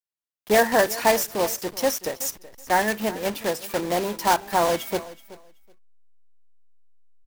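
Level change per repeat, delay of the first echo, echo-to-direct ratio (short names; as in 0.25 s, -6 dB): -15.0 dB, 0.376 s, -18.0 dB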